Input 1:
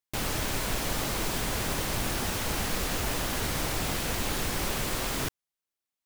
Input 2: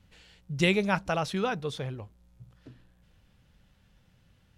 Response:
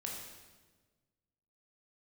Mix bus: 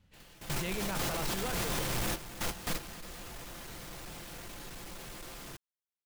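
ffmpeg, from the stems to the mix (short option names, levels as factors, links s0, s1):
-filter_complex "[0:a]aecho=1:1:5.8:0.35,asoftclip=type=tanh:threshold=0.0376,volume=1.19,asplit=2[s0][s1];[s1]volume=0.2[s2];[1:a]asoftclip=type=hard:threshold=0.211,volume=0.562,asplit=2[s3][s4];[s4]apad=whole_len=267148[s5];[s0][s5]sidechaingate=range=0.0501:threshold=0.00158:ratio=16:detection=peak[s6];[s2]aecho=0:1:277:1[s7];[s6][s3][s7]amix=inputs=3:normalize=0,alimiter=level_in=1.33:limit=0.0631:level=0:latency=1:release=11,volume=0.75"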